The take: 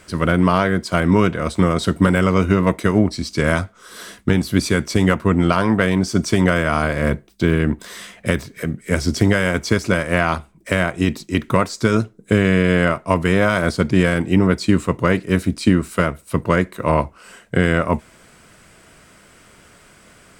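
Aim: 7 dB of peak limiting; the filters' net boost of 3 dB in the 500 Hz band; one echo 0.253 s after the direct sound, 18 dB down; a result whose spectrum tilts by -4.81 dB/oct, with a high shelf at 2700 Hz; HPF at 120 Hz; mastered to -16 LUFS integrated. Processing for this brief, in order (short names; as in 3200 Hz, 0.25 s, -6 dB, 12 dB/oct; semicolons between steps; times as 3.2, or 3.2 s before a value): HPF 120 Hz; bell 500 Hz +4 dB; high shelf 2700 Hz -8.5 dB; limiter -7.5 dBFS; echo 0.253 s -18 dB; gain +4.5 dB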